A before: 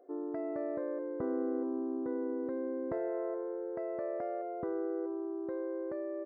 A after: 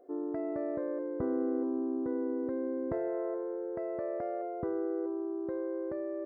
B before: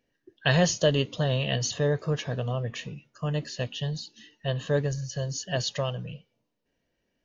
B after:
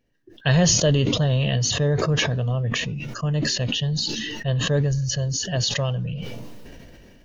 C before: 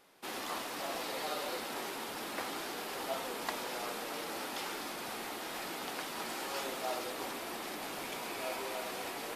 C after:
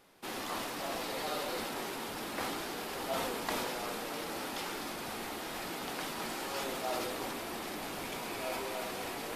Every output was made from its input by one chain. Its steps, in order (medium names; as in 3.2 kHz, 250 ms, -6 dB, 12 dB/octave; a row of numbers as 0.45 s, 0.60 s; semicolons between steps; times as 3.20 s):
bass shelf 160 Hz +11 dB; decay stretcher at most 21 dB/s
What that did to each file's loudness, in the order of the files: +2.0 LU, +6.0 LU, +1.5 LU